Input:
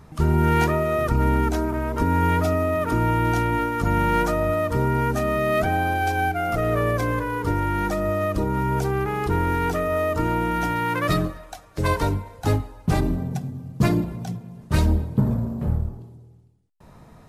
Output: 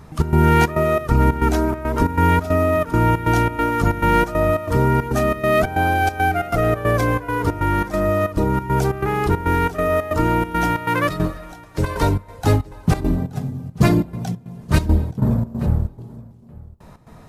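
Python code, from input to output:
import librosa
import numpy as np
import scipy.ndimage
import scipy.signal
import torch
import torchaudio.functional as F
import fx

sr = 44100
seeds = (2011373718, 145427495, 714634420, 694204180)

p1 = fx.step_gate(x, sr, bpm=138, pattern='xx.xxx.xx.', floor_db=-12.0, edge_ms=4.5)
p2 = p1 + fx.echo_single(p1, sr, ms=876, db=-21.5, dry=0)
y = p2 * librosa.db_to_amplitude(5.0)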